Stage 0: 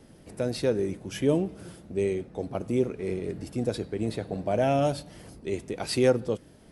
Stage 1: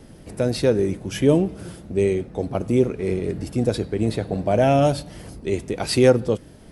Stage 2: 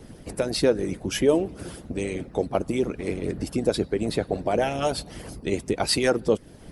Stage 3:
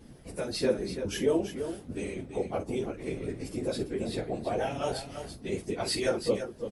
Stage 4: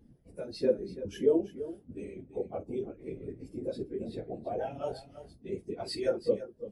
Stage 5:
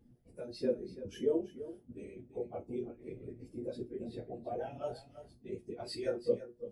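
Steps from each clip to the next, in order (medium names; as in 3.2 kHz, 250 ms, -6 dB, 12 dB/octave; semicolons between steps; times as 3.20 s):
bass shelf 92 Hz +6.5 dB; trim +6.5 dB
harmonic-percussive split harmonic -18 dB; in parallel at -1 dB: compression, threshold -32 dBFS, peak gain reduction 15.5 dB
phase randomisation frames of 50 ms; multi-tap echo 45/336 ms -12.5/-9 dB; trim -7.5 dB
reverse; upward compressor, threshold -38 dBFS; reverse; spectral contrast expander 1.5:1
feedback comb 120 Hz, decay 0.19 s, harmonics all, mix 70%; trim +1 dB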